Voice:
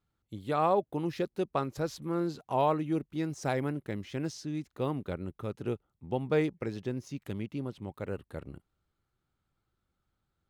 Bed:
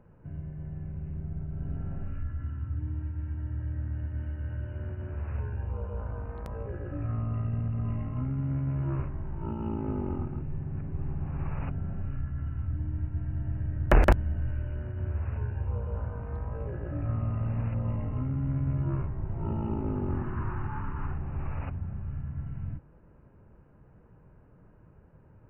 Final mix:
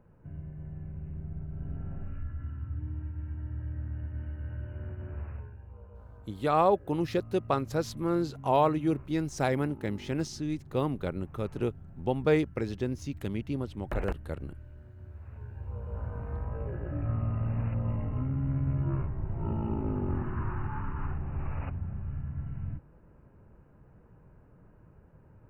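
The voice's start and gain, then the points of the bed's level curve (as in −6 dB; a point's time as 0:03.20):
5.95 s, +3.0 dB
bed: 0:05.21 −3 dB
0:05.60 −14.5 dB
0:15.19 −14.5 dB
0:16.18 −0.5 dB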